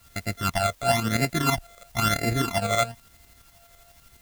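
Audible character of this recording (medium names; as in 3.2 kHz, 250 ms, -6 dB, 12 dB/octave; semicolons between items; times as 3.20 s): a buzz of ramps at a fixed pitch in blocks of 64 samples; phasing stages 12, 1 Hz, lowest notch 280–1100 Hz; a quantiser's noise floor 10-bit, dither triangular; tremolo saw up 12 Hz, depth 55%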